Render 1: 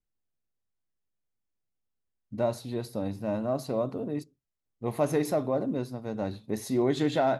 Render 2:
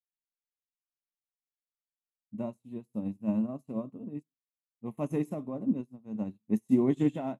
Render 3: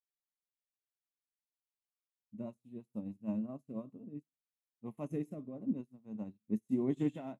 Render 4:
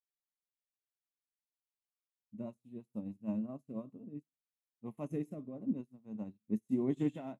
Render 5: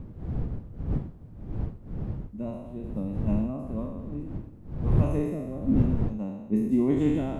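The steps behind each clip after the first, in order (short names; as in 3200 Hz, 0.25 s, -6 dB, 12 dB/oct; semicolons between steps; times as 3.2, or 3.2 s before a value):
EQ curve 110 Hz 0 dB, 210 Hz +12 dB, 410 Hz -1 dB, 730 Hz -4 dB, 1100 Hz +1 dB, 1500 Hz -10 dB, 2800 Hz +2 dB, 4500 Hz -16 dB, 7400 Hz +4 dB, 11000 Hz +1 dB; upward expander 2.5:1, over -42 dBFS
rotary speaker horn 6.3 Hz, later 0.85 Hz, at 3.11; gain -6 dB
nothing audible
spectral trails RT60 1.18 s; wind noise 130 Hz -38 dBFS; gain +7 dB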